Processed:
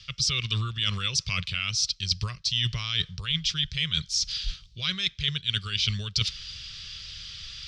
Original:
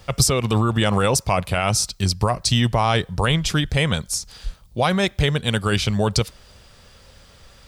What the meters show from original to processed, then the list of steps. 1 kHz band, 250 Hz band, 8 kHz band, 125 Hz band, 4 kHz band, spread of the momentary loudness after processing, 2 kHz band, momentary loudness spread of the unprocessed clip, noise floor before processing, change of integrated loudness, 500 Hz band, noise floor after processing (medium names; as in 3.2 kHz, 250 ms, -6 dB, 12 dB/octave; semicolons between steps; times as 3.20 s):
-19.5 dB, -17.5 dB, -8.0 dB, -11.0 dB, +0.5 dB, 12 LU, -7.0 dB, 6 LU, -50 dBFS, -6.5 dB, -27.0 dB, -53 dBFS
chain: FFT filter 160 Hz 0 dB, 260 Hz -18 dB, 390 Hz -12 dB, 800 Hz -27 dB, 1.2 kHz -4 dB, 1.8 kHz +1 dB, 3.2 kHz +15 dB, 5.6 kHz +12 dB, 9.6 kHz -14 dB, 15 kHz -28 dB; reverse; compression 6:1, threshold -26 dBFS, peak gain reduction 19.5 dB; reverse; trim +1 dB